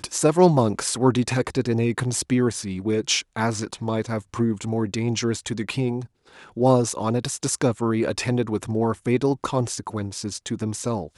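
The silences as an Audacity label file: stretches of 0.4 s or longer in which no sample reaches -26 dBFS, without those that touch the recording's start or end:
6.020000	6.570000	silence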